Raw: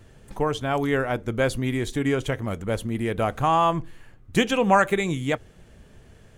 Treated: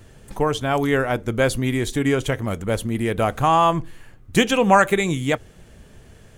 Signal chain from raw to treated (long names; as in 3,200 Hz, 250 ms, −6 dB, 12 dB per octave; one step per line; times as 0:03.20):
high-shelf EQ 5,900 Hz +5 dB
level +3.5 dB